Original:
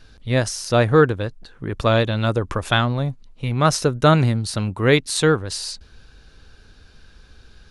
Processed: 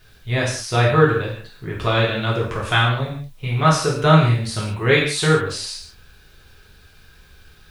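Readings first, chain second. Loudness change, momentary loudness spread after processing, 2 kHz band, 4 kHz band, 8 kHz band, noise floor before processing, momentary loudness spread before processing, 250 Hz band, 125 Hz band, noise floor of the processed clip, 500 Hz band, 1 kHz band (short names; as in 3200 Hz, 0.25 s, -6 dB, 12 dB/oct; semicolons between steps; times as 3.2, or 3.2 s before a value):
+0.5 dB, 14 LU, +3.0 dB, +1.5 dB, -1.0 dB, -50 dBFS, 13 LU, -1.0 dB, +1.5 dB, -50 dBFS, -1.0 dB, +2.0 dB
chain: bell 2200 Hz +6.5 dB 1.6 oct; requantised 10-bit, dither triangular; non-linear reverb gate 0.22 s falling, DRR -4.5 dB; gain -7.5 dB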